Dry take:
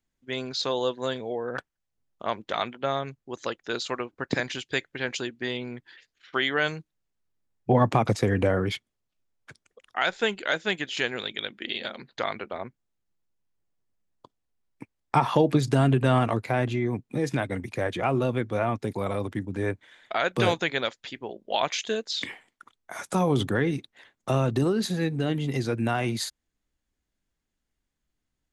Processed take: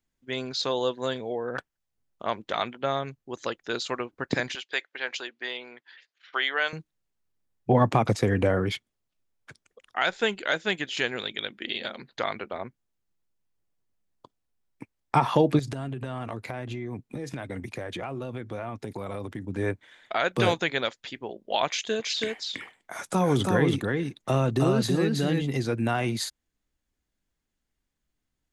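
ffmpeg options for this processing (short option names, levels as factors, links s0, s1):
-filter_complex "[0:a]asettb=1/sr,asplit=3[s0][s1][s2];[s0]atrim=end=4.554[s3];[s1]atrim=start=4.55:end=6.73,asetpts=PTS-STARTPTS,afade=t=in:d=0.004:c=qsin,afade=t=out:st=2.176:d=0.004:c=qsin,highpass=610,lowpass=5300[s4];[s2]atrim=start=6.726[s5];[s3][s4]acrossfade=d=0.004:c1=hsin:c2=qsin[s6];[s6][s5]acrossfade=d=0.004:c1=qsin:c2=hsin,asettb=1/sr,asplit=3[s7][s8][s9];[s7]atrim=end=15.594[s10];[s8]atrim=start=15.59:end=19.46,asetpts=PTS-STARTPTS,afade=t=in:d=0.004:c=qsin,afade=t=out:st=3.866:d=0.004:c=qsin,acompressor=threshold=0.0316:ratio=8:attack=3.2:release=140:knee=1:detection=peak[s11];[s9]atrim=start=19.456[s12];[s10][s11]acrossfade=d=0.004:c1=hsin:c2=qsin[s13];[s13][s12]acrossfade=d=0.004:c1=qsin:c2=hsin,asettb=1/sr,asplit=3[s14][s15][s16];[s14]atrim=end=21.674[s17];[s15]atrim=start=21.67:end=25.42,asetpts=PTS-STARTPTS,afade=t=in:d=0.004:c=qsin,afade=t=out:st=3.746:d=0.004:c=qsin,aecho=1:1:324:0.708,atrim=end_sample=165375[s18];[s16]atrim=start=25.416[s19];[s17][s18]acrossfade=d=0.004:c1=hsin:c2=qsin[s20];[s20][s19]acrossfade=d=0.004:c1=qsin:c2=hsin"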